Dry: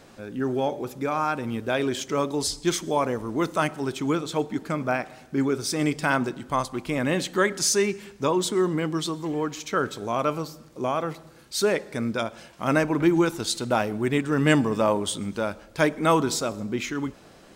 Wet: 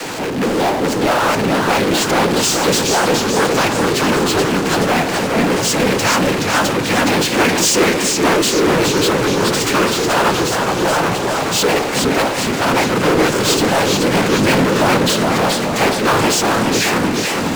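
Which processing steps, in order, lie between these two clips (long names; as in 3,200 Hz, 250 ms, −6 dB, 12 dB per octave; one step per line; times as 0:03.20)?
low-shelf EQ 210 Hz −9 dB
cochlear-implant simulation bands 8
power curve on the samples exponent 0.35
feedback echo with a swinging delay time 424 ms, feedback 58%, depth 188 cents, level −3.5 dB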